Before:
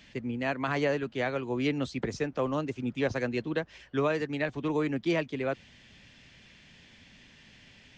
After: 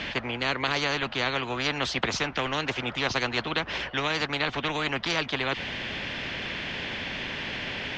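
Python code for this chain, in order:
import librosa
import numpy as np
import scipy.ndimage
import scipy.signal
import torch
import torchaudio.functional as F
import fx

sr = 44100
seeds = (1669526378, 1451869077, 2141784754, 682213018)

y = scipy.signal.sosfilt(scipy.signal.butter(2, 2800.0, 'lowpass', fs=sr, output='sos'), x)
y = fx.low_shelf(y, sr, hz=120.0, db=-11.5)
y = fx.spectral_comp(y, sr, ratio=4.0)
y = y * librosa.db_to_amplitude(7.0)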